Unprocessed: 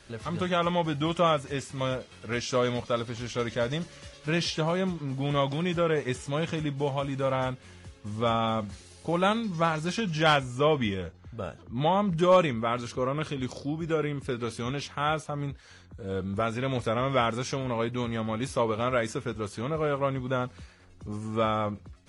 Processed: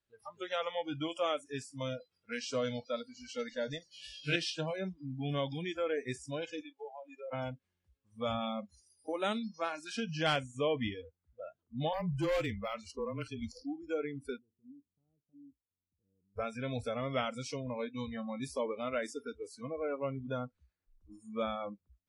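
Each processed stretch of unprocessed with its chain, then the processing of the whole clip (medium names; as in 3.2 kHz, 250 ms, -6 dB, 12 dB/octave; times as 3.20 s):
3.91–4.36 s: peaking EQ 3.2 kHz +10 dB 0.97 oct + band-stop 1 kHz, Q 18 + flutter echo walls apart 3.6 m, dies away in 0.54 s
6.61–7.33 s: high-pass 390 Hz 24 dB/octave + dynamic bell 550 Hz, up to +4 dB, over -40 dBFS, Q 0.75 + compression 3:1, threshold -35 dBFS
11.93–13.64 s: frequency shift -24 Hz + hard clipper -20.5 dBFS
14.38–16.36 s: four-pole ladder low-pass 420 Hz, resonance 25% + compression 1.5:1, threshold -42 dBFS
whole clip: band-stop 6.3 kHz, Q 18; spectral noise reduction 30 dB; dynamic bell 1 kHz, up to -7 dB, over -41 dBFS, Q 1.6; trim -6 dB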